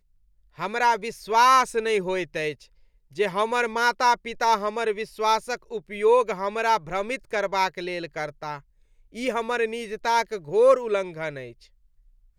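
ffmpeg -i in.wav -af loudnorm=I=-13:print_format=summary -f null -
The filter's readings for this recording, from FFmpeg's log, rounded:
Input Integrated:    -24.0 LUFS
Input True Peak:      -7.2 dBTP
Input LRA:             1.9 LU
Input Threshold:     -34.9 LUFS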